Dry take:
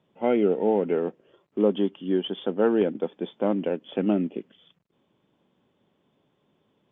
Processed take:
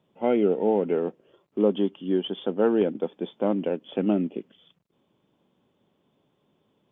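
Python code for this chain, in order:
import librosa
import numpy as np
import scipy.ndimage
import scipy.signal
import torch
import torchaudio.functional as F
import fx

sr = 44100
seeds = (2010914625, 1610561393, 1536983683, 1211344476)

y = fx.peak_eq(x, sr, hz=1800.0, db=-3.0, octaves=0.74)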